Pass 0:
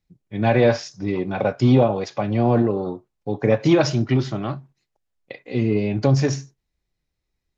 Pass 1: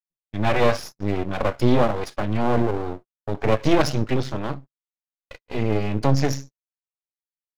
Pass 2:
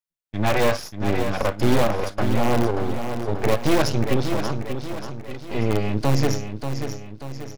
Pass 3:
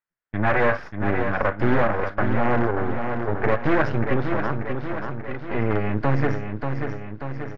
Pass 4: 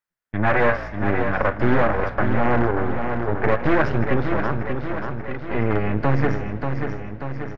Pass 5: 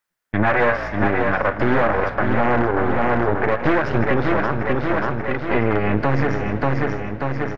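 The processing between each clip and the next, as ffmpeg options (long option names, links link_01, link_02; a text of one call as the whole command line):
ffmpeg -i in.wav -af "aeval=exprs='max(val(0),0)':channel_layout=same,agate=range=-47dB:threshold=-39dB:ratio=16:detection=peak,volume=2.5dB" out.wav
ffmpeg -i in.wav -filter_complex "[0:a]asplit=2[link_01][link_02];[link_02]aeval=exprs='(mod(3.16*val(0)+1,2)-1)/3.16':channel_layout=same,volume=-11dB[link_03];[link_01][link_03]amix=inputs=2:normalize=0,aecho=1:1:586|1172|1758|2344|2930|3516:0.398|0.191|0.0917|0.044|0.0211|0.0101,volume=-1.5dB" out.wav
ffmpeg -i in.wav -filter_complex "[0:a]asplit=2[link_01][link_02];[link_02]acompressor=threshold=-27dB:ratio=6,volume=2dB[link_03];[link_01][link_03]amix=inputs=2:normalize=0,lowpass=frequency=1700:width_type=q:width=2.5,volume=-4dB" out.wav
ffmpeg -i in.wav -filter_complex "[0:a]asplit=5[link_01][link_02][link_03][link_04][link_05];[link_02]adelay=157,afreqshift=58,volume=-17dB[link_06];[link_03]adelay=314,afreqshift=116,volume=-23dB[link_07];[link_04]adelay=471,afreqshift=174,volume=-29dB[link_08];[link_05]adelay=628,afreqshift=232,volume=-35.1dB[link_09];[link_01][link_06][link_07][link_08][link_09]amix=inputs=5:normalize=0,volume=1.5dB" out.wav
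ffmpeg -i in.wav -af "lowshelf=frequency=210:gain=-6,alimiter=limit=-15.5dB:level=0:latency=1:release=248,volume=8.5dB" out.wav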